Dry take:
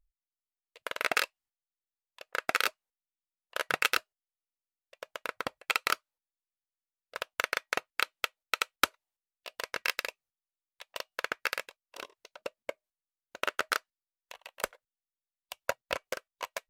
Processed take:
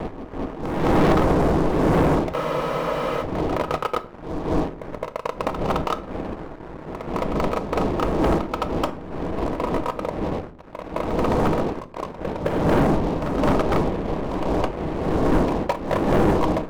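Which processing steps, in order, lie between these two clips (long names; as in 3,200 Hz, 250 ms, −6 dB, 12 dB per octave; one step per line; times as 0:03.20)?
wind on the microphone 470 Hz −37 dBFS
Butterworth low-pass 1,200 Hz 72 dB per octave
parametric band 120 Hz −9.5 dB 0.37 octaves
leveller curve on the samples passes 5
on a send: backwards echo 213 ms −7.5 dB
on the sum: rectangular room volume 550 cubic metres, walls furnished, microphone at 0.57 metres
frozen spectrum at 0:02.36, 0.86 s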